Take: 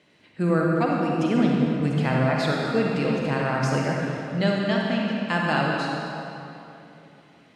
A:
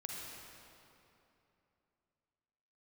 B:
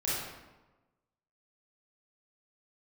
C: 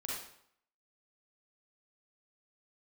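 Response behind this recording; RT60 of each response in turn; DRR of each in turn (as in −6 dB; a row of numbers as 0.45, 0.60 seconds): A; 2.9, 1.1, 0.65 seconds; −2.0, −9.0, −5.0 decibels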